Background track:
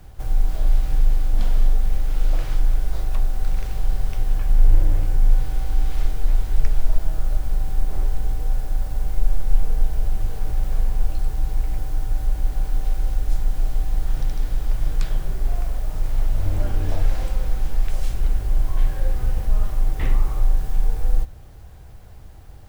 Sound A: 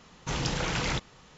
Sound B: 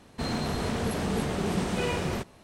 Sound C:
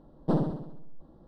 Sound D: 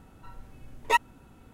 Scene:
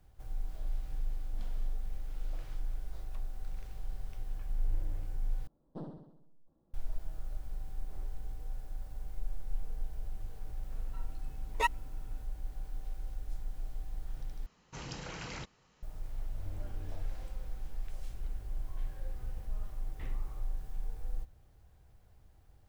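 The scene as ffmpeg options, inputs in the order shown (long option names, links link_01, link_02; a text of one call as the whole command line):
ffmpeg -i bed.wav -i cue0.wav -i cue1.wav -i cue2.wav -i cue3.wav -filter_complex "[0:a]volume=-18.5dB[link_01];[1:a]bandreject=frequency=3500:width=11[link_02];[link_01]asplit=3[link_03][link_04][link_05];[link_03]atrim=end=5.474[link_06];[3:a]atrim=end=1.27,asetpts=PTS-STARTPTS,volume=-18dB[link_07];[link_04]atrim=start=6.736:end=14.464[link_08];[link_02]atrim=end=1.37,asetpts=PTS-STARTPTS,volume=-13dB[link_09];[link_05]atrim=start=15.826[link_10];[4:a]atrim=end=1.53,asetpts=PTS-STARTPTS,volume=-7dB,afade=type=in:duration=0.004:curve=hsin,afade=type=out:start_time=1.526:duration=0.004:curve=hsin,adelay=10700[link_11];[link_06][link_07]acrossfade=duration=0.004:curve1=hsin:curve2=hsin[link_12];[link_12][link_08]acrossfade=duration=0.004:curve1=hsin:curve2=hsin[link_13];[link_13][link_09]acrossfade=duration=0.004:curve1=hsin:curve2=hsin[link_14];[link_14][link_10]acrossfade=duration=0.004:curve1=hsin:curve2=hsin[link_15];[link_15][link_11]amix=inputs=2:normalize=0" out.wav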